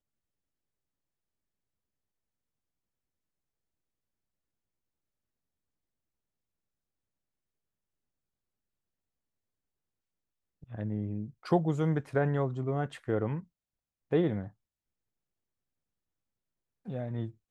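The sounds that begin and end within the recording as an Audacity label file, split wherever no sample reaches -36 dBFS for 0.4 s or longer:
10.740000	13.400000	sound
14.120000	14.470000	sound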